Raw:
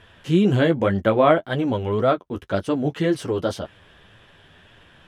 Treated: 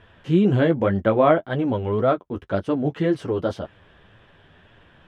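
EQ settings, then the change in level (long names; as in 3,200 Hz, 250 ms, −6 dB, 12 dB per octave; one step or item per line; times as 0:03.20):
low-pass filter 1,900 Hz 6 dB per octave
0.0 dB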